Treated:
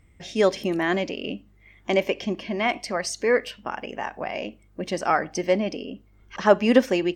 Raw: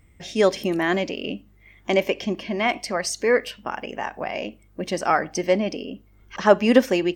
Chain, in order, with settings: high shelf 12000 Hz -9 dB; gain -1.5 dB

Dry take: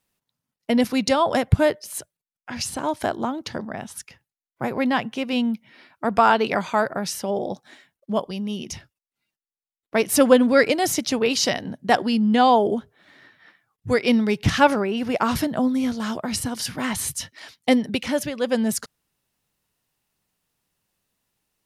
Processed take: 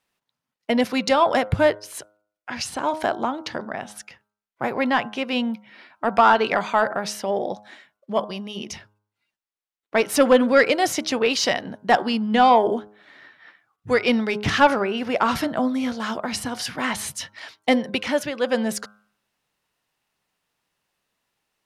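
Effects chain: overdrive pedal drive 11 dB, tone 2700 Hz, clips at -2.5 dBFS; de-hum 104.4 Hz, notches 15; gain -1 dB

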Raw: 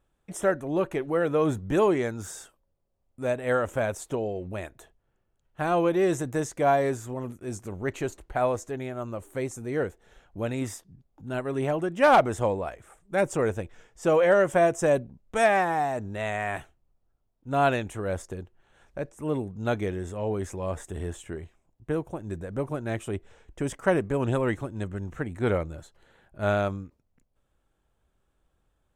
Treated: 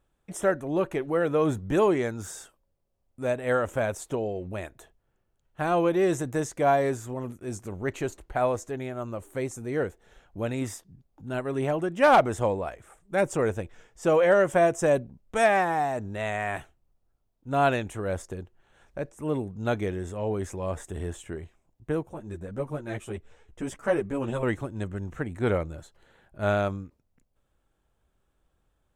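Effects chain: 22.03–24.43 ensemble effect

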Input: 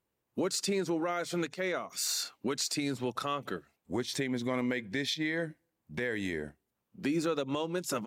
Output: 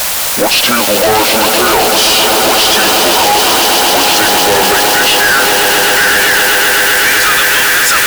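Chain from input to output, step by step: gliding pitch shift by -9.5 st ending unshifted; low shelf 130 Hz -8.5 dB; in parallel at -6 dB: requantised 6-bit, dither triangular; on the sum: high-pass sweep 550 Hz -> 1700 Hz, 4.74–5.48; on a send: swelling echo 0.128 s, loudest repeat 8, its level -11 dB; on the sum: fuzz box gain 42 dB, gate -45 dBFS; gain +6 dB

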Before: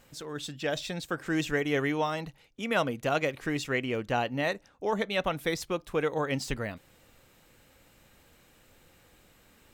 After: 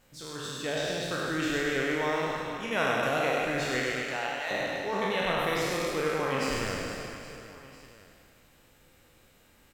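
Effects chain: spectral trails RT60 2.12 s; 3.92–4.51 HPF 850 Hz 12 dB/oct; reverse bouncing-ball echo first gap 0.1 s, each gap 1.5×, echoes 5; gain -6 dB

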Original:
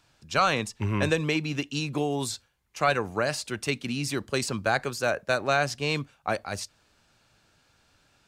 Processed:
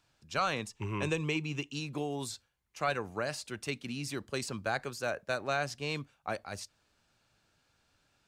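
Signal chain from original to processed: 0.73–1.72 ripple EQ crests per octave 0.71, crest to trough 7 dB; gain -8 dB

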